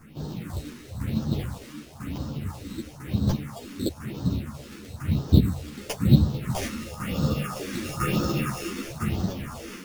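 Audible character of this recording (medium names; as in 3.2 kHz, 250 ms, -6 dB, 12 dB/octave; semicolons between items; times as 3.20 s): aliases and images of a low sample rate 4 kHz, jitter 0%; phasing stages 4, 1 Hz, lowest notch 110–2200 Hz; tremolo saw down 1 Hz, depth 65%; a shimmering, thickened sound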